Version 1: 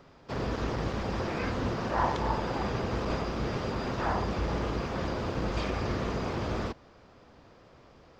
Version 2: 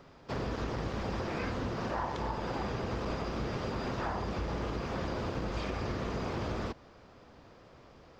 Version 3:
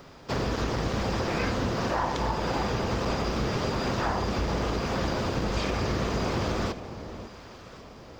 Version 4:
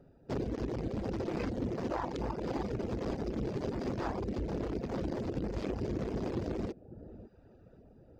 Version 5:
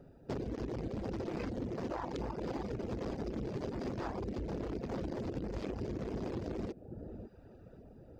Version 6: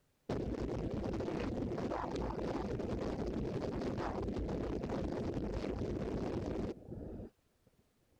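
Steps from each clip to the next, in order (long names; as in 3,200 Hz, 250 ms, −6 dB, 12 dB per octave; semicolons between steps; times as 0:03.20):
downward compressor, threshold −31 dBFS, peak gain reduction 9 dB
high-shelf EQ 4,900 Hz +9.5 dB; on a send: delay that swaps between a low-pass and a high-pass 548 ms, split 940 Hz, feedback 53%, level −11 dB; on the sum: level +6.5 dB
adaptive Wiener filter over 41 samples; reverb reduction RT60 0.68 s; dynamic equaliser 330 Hz, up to +7 dB, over −46 dBFS, Q 1.1; level −7 dB
downward compressor, threshold −38 dBFS, peak gain reduction 8.5 dB; level +3 dB
noise gate −50 dBFS, range −22 dB; background noise pink −78 dBFS; highs frequency-modulated by the lows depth 0.31 ms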